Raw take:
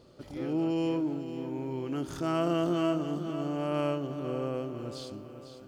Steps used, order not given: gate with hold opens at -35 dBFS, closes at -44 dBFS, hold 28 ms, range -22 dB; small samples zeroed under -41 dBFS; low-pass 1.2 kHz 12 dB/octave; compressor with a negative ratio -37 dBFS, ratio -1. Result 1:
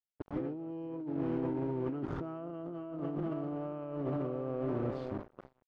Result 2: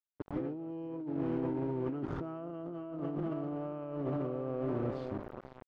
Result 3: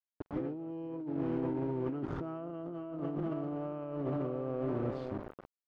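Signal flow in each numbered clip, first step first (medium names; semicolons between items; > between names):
small samples zeroed > gate with hold > compressor with a negative ratio > low-pass; small samples zeroed > compressor with a negative ratio > gate with hold > low-pass; gate with hold > small samples zeroed > low-pass > compressor with a negative ratio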